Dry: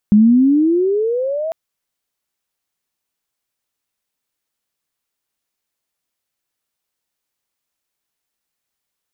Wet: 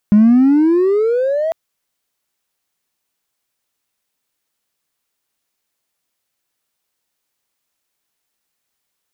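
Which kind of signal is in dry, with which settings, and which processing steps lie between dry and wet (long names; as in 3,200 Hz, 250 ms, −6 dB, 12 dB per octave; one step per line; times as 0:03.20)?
pitch glide with a swell sine, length 1.40 s, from 203 Hz, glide +20.5 semitones, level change −13.5 dB, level −5.5 dB
low-shelf EQ 110 Hz −3.5 dB
in parallel at −3 dB: hard clipping −21.5 dBFS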